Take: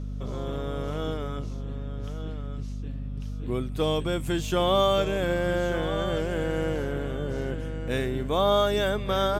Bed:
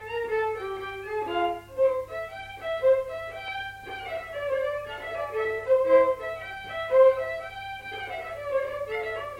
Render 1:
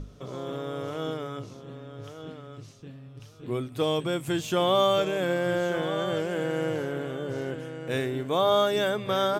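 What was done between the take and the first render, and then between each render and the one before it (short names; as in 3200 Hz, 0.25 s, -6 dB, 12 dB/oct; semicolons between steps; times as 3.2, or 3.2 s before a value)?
notches 50/100/150/200/250 Hz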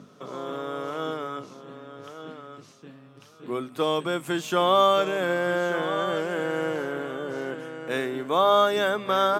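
HPF 170 Hz 24 dB/oct; bell 1200 Hz +7 dB 1.1 oct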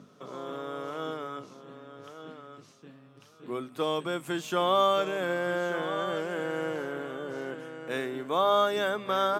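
gain -4.5 dB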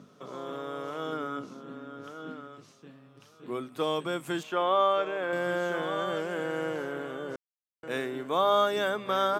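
1.12–2.48 small resonant body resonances 240/1400 Hz, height 9 dB, ringing for 25 ms; 4.43–5.33 tone controls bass -12 dB, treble -15 dB; 7.36–7.83 mute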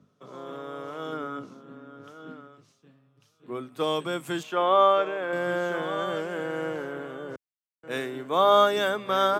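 in parallel at -3 dB: compressor, threshold -35 dBFS, peak gain reduction 14.5 dB; on the sum: three-band expander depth 70%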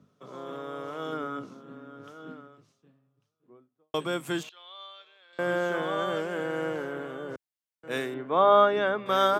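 2.03–3.94 studio fade out; 4.49–5.39 band-pass 4000 Hz, Q 7.6; 8.14–9.06 LPF 2300 Hz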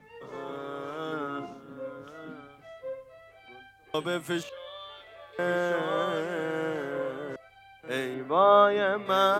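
add bed -17 dB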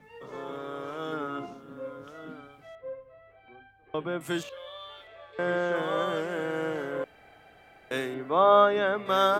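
2.75–4.21 air absorption 490 m; 5.07–5.76 air absorption 67 m; 7.04–7.91 room tone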